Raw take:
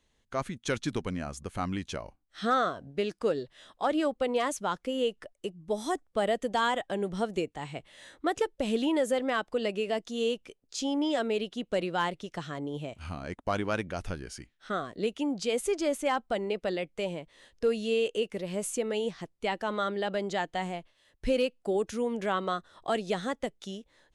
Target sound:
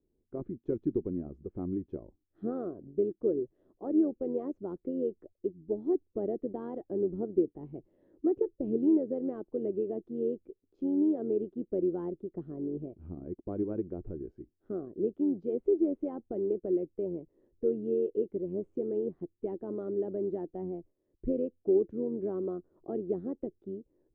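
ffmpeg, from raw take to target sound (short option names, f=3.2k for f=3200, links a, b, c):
-af "tremolo=f=91:d=0.462,lowpass=f=360:t=q:w=4.5,volume=-4dB"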